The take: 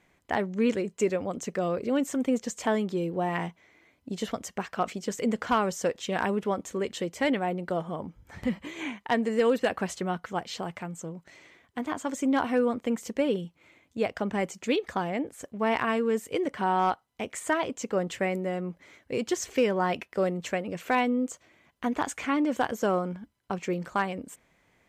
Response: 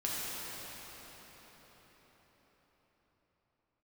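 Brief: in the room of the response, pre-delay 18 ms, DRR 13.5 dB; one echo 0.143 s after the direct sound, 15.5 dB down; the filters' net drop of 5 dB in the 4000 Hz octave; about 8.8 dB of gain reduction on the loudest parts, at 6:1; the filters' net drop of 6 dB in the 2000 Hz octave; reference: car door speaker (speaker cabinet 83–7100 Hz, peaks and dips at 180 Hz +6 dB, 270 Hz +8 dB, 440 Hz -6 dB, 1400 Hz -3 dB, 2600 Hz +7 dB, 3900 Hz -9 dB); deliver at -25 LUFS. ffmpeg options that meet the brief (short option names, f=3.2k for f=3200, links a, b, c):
-filter_complex "[0:a]equalizer=f=2k:t=o:g=-7.5,equalizer=f=4k:t=o:g=-4,acompressor=threshold=-30dB:ratio=6,aecho=1:1:143:0.168,asplit=2[a][b];[1:a]atrim=start_sample=2205,adelay=18[c];[b][c]afir=irnorm=-1:irlink=0,volume=-20dB[d];[a][d]amix=inputs=2:normalize=0,highpass=83,equalizer=f=180:t=q:w=4:g=6,equalizer=f=270:t=q:w=4:g=8,equalizer=f=440:t=q:w=4:g=-6,equalizer=f=1.4k:t=q:w=4:g=-3,equalizer=f=2.6k:t=q:w=4:g=7,equalizer=f=3.9k:t=q:w=4:g=-9,lowpass=f=7.1k:w=0.5412,lowpass=f=7.1k:w=1.3066,volume=8dB"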